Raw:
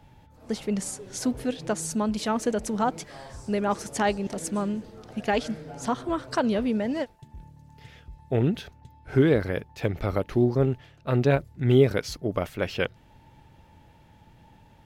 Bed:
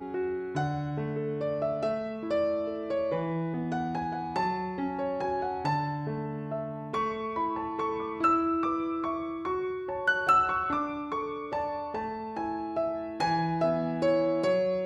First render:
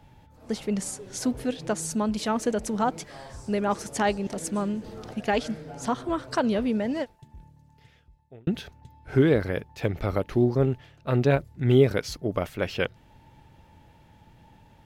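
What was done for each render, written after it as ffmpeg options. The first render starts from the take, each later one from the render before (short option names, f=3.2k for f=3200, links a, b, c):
-filter_complex "[0:a]asettb=1/sr,asplit=3[a][b][c];[a]atrim=end=4.624[d];[b]atrim=start=4.62:end=5.14,asetpts=PTS-STARTPTS,afade=t=in:d=0.004:c=qsin,afade=t=out:st=0.516:d=0.004:c=qsin,acompressor=mode=upward:threshold=-31dB:ratio=2.5:attack=3.2:release=140:knee=2.83:detection=peak[e];[c]atrim=start=5.136[f];[d][e]acrossfade=d=0.004:c1=hsin:c2=qsin[g];[g][f]acrossfade=d=0.004:c1=qsin:c2=hsin,asplit=2[h][i];[h]atrim=end=8.47,asetpts=PTS-STARTPTS,afade=t=out:st=6.91:d=1.56[j];[i]atrim=start=8.47,asetpts=PTS-STARTPTS,afade=t=in:d=0.004:c=hsin[k];[j][k]concat=n=2:v=0:a=1"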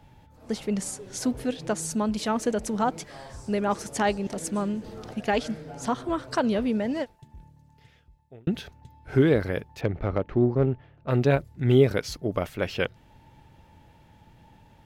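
-filter_complex "[0:a]asettb=1/sr,asplit=3[a][b][c];[a]atrim=end=9.814[d];[b]atrim=start=9.81:end=11.1,asetpts=PTS-STARTPTS,afade=t=in:d=0.004:c=qsin,afade=t=out:st=1.286:d=0.004:c=qsin,adynamicsmooth=sensitivity=1:basefreq=1.9k[e];[c]atrim=start=11.096[f];[d][e]acrossfade=d=0.004:c1=hsin:c2=qsin[g];[g][f]acrossfade=d=0.004:c1=qsin:c2=hsin"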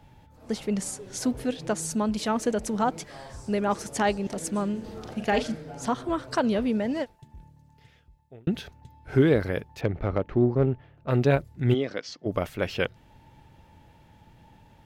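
-filter_complex "[0:a]asettb=1/sr,asplit=3[a][b][c];[a]atrim=end=4.724[d];[b]atrim=start=4.72:end=5.55,asetpts=PTS-STARTPTS,afade=t=in:d=0.004:c=qsin,afade=t=out:st=0.826:d=0.004:c=qsin,asplit=2[e][f];[f]adelay=40,volume=-8dB[g];[e][g]amix=inputs=2:normalize=0,atrim=end_sample=36603[h];[c]atrim=start=5.546[i];[d][h]acrossfade=d=0.004:c1=hsin:c2=qsin[j];[j][i]acrossfade=d=0.004:c1=qsin:c2=hsin,asplit=3[k][l][m];[k]afade=t=out:st=11.73:d=0.02[n];[l]highpass=340,equalizer=f=410:t=q:w=4:g=-9,equalizer=f=610:t=q:w=4:g=-3,equalizer=f=880:t=q:w=4:g=-8,equalizer=f=1.4k:t=q:w=4:g=-6,equalizer=f=2.4k:t=q:w=4:g=-6,equalizer=f=3.9k:t=q:w=4:g=-5,lowpass=f=5.6k:w=0.5412,lowpass=f=5.6k:w=1.3066,afade=t=in:st=11.73:d=0.02,afade=t=out:st=12.25:d=0.02[o];[m]afade=t=in:st=12.25:d=0.02[p];[n][o][p]amix=inputs=3:normalize=0"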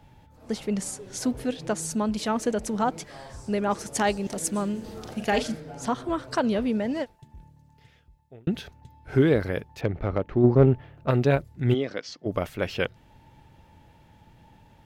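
-filter_complex "[0:a]asettb=1/sr,asplit=3[a][b][c];[a]atrim=end=3.954[d];[b]atrim=start=3.95:end=5.6,asetpts=PTS-STARTPTS,afade=t=in:d=0.004:c=qsin,afade=t=out:st=1.646:d=0.004:c=qsin,highshelf=f=5.6k:g=8[e];[c]atrim=start=5.596[f];[d][e]acrossfade=d=0.004:c1=hsin:c2=qsin[g];[g][f]acrossfade=d=0.004:c1=qsin:c2=hsin,asplit=3[h][i][j];[h]afade=t=out:st=10.43:d=0.02[k];[i]acontrast=53,afade=t=in:st=10.43:d=0.02,afade=t=out:st=11.1:d=0.02[l];[j]afade=t=in:st=11.1:d=0.02[m];[k][l][m]amix=inputs=3:normalize=0"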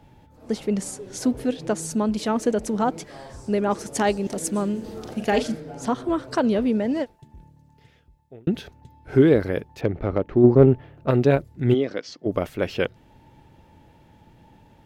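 -af "equalizer=f=340:t=o:w=1.7:g=5.5"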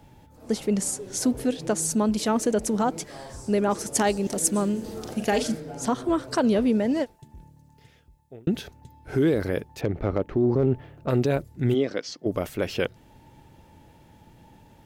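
-filter_complex "[0:a]acrossover=split=5600[a][b];[a]alimiter=limit=-14dB:level=0:latency=1[c];[b]acontrast=82[d];[c][d]amix=inputs=2:normalize=0"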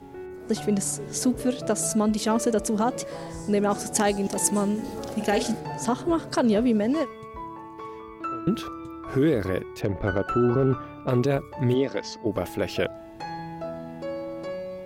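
-filter_complex "[1:a]volume=-7.5dB[a];[0:a][a]amix=inputs=2:normalize=0"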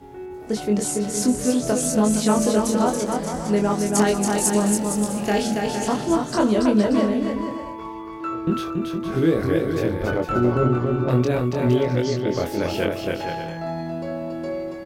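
-filter_complex "[0:a]asplit=2[a][b];[b]adelay=24,volume=-3.5dB[c];[a][c]amix=inputs=2:normalize=0,aecho=1:1:280|462|580.3|657.2|707.2:0.631|0.398|0.251|0.158|0.1"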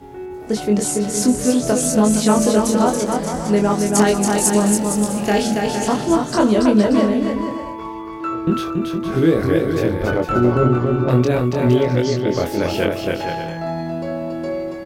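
-af "volume=4dB"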